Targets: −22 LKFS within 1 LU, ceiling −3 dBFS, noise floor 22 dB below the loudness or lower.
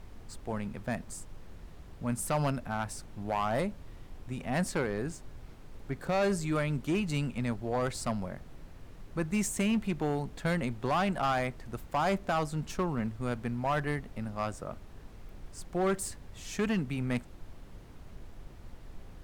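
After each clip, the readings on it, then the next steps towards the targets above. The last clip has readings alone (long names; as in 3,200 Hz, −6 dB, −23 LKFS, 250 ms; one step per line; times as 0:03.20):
share of clipped samples 1.6%; peaks flattened at −23.5 dBFS; background noise floor −50 dBFS; target noise floor −55 dBFS; integrated loudness −33.0 LKFS; sample peak −23.5 dBFS; target loudness −22.0 LKFS
→ clipped peaks rebuilt −23.5 dBFS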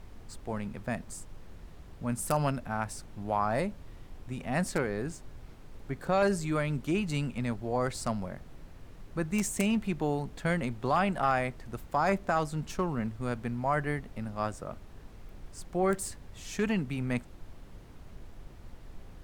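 share of clipped samples 0.0%; background noise floor −50 dBFS; target noise floor −54 dBFS
→ noise reduction from a noise print 6 dB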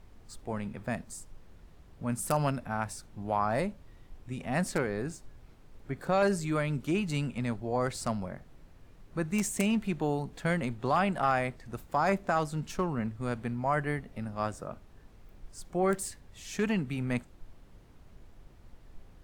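background noise floor −56 dBFS; integrated loudness −32.0 LKFS; sample peak −14.5 dBFS; target loudness −22.0 LKFS
→ level +10 dB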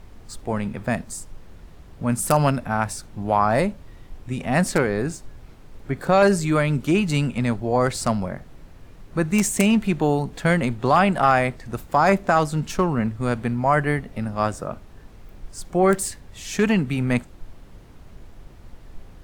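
integrated loudness −22.0 LKFS; sample peak −4.5 dBFS; background noise floor −46 dBFS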